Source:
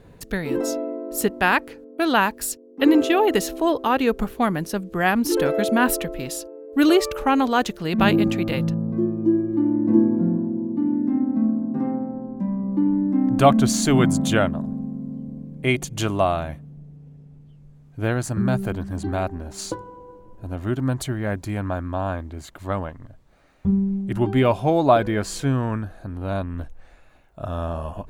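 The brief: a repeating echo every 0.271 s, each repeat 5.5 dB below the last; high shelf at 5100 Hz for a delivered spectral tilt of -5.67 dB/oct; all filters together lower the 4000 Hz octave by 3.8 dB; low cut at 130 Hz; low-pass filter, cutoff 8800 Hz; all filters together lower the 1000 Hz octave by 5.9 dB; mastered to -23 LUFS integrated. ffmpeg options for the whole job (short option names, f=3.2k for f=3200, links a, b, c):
-af "highpass=130,lowpass=8.8k,equalizer=f=1k:t=o:g=-8.5,equalizer=f=4k:t=o:g=-6,highshelf=f=5.1k:g=3.5,aecho=1:1:271|542|813|1084|1355|1626|1897:0.531|0.281|0.149|0.079|0.0419|0.0222|0.0118,volume=-0.5dB"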